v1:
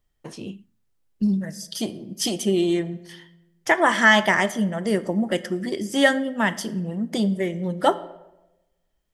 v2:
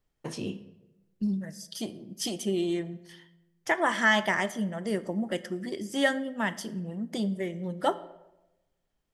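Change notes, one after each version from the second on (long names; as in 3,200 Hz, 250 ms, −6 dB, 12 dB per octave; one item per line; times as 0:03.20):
first voice: send on
second voice −7.5 dB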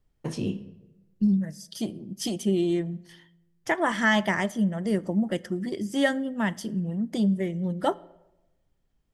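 second voice: send −7.0 dB
master: add low-shelf EQ 270 Hz +10 dB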